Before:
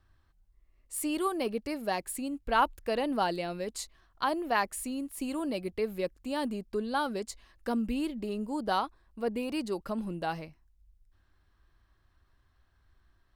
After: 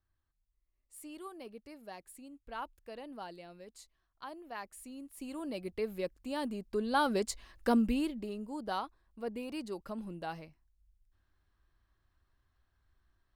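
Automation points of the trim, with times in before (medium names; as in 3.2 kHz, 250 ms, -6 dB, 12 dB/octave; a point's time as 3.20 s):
4.50 s -16 dB
5.75 s -4 dB
6.55 s -4 dB
7.17 s +3.5 dB
7.76 s +3.5 dB
8.39 s -7 dB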